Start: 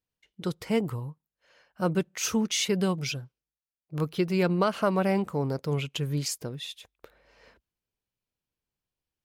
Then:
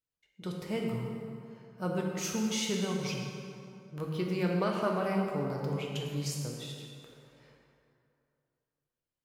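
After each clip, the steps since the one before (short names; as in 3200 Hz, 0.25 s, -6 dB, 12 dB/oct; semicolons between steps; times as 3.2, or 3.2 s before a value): plate-style reverb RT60 2.6 s, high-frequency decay 0.6×, DRR -1 dB; gain -8.5 dB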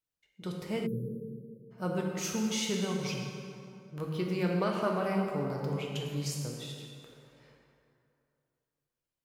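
spectral delete 0.86–1.71, 590–9800 Hz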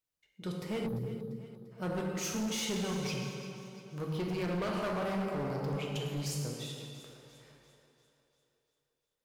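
overloaded stage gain 31 dB; split-band echo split 350 Hz, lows 0.164 s, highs 0.345 s, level -14.5 dB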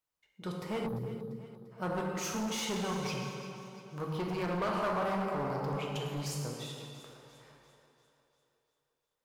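bell 1000 Hz +8 dB 1.3 oct; gain -1.5 dB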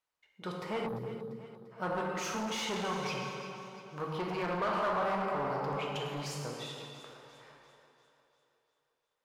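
overdrive pedal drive 10 dB, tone 2700 Hz, clips at -23 dBFS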